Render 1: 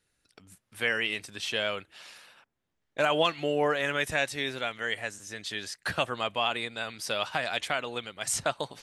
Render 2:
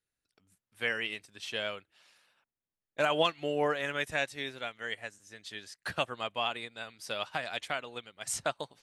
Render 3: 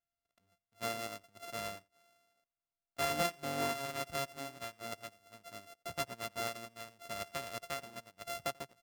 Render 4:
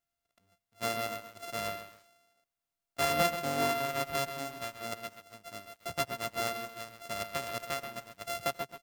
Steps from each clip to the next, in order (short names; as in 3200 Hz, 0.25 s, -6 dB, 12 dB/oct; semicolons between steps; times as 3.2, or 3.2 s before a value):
upward expander 1.5:1, over -48 dBFS; gain -1.5 dB
sample sorter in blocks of 64 samples; outdoor echo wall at 15 m, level -26 dB; gain -6 dB
lo-fi delay 0.132 s, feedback 35%, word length 9-bit, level -10 dB; gain +4.5 dB